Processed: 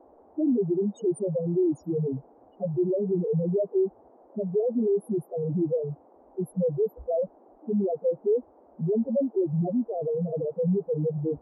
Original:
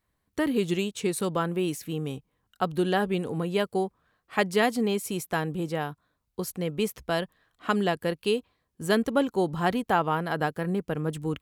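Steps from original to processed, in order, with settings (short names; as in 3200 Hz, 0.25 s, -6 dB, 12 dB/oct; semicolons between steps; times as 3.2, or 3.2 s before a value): resonant low shelf 750 Hz +9.5 dB, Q 3; compressor 6:1, threshold -15 dBFS, peak gain reduction 10.5 dB; hard clip -18 dBFS, distortion -10 dB; loudest bins only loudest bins 2; band noise 240–830 Hz -56 dBFS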